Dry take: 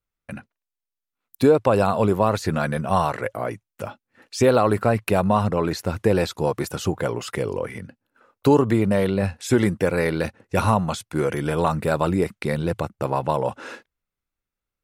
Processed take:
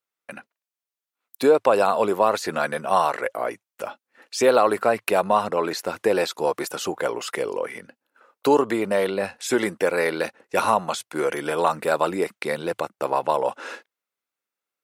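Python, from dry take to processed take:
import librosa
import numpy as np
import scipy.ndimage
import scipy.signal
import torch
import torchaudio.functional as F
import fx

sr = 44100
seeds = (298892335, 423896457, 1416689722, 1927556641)

y = scipy.signal.sosfilt(scipy.signal.butter(2, 400.0, 'highpass', fs=sr, output='sos'), x)
y = y * librosa.db_to_amplitude(2.0)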